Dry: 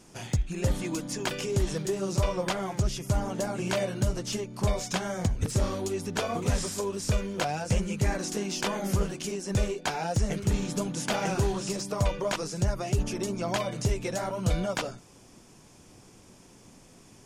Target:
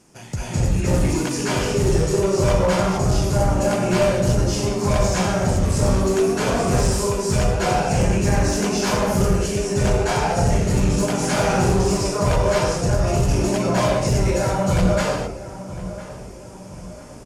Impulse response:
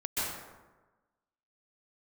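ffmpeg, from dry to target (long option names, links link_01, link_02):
-filter_complex "[0:a]highpass=frequency=40:poles=1,equalizer=frequency=3600:width_type=o:width=0.47:gain=-4,asplit=2[link_01][link_02];[link_02]adelay=1005,lowpass=frequency=2000:poles=1,volume=-14.5dB,asplit=2[link_03][link_04];[link_04]adelay=1005,lowpass=frequency=2000:poles=1,volume=0.49,asplit=2[link_05][link_06];[link_06]adelay=1005,lowpass=frequency=2000:poles=1,volume=0.49,asplit=2[link_07][link_08];[link_08]adelay=1005,lowpass=frequency=2000:poles=1,volume=0.49,asplit=2[link_09][link_10];[link_10]adelay=1005,lowpass=frequency=2000:poles=1,volume=0.49[link_11];[link_01][link_03][link_05][link_07][link_09][link_11]amix=inputs=6:normalize=0[link_12];[1:a]atrim=start_sample=2205,afade=type=out:start_time=0.33:duration=0.01,atrim=end_sample=14994,asetrate=26460,aresample=44100[link_13];[link_12][link_13]afir=irnorm=-1:irlink=0,aeval=exprs='clip(val(0),-1,0.2)':channel_layout=same"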